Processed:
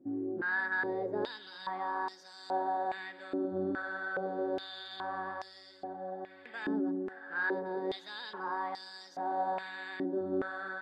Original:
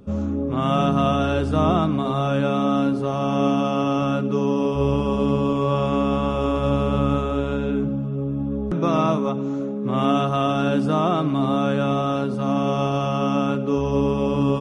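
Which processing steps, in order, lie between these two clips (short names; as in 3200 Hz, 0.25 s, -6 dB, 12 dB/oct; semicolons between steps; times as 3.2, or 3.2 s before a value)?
AGC gain up to 3.5 dB; on a send: diffused feedback echo 1.044 s, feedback 61%, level -14 dB; on the sum: speed mistake 33 rpm record played at 45 rpm; stepped band-pass 2.4 Hz 310–5400 Hz; gain -7 dB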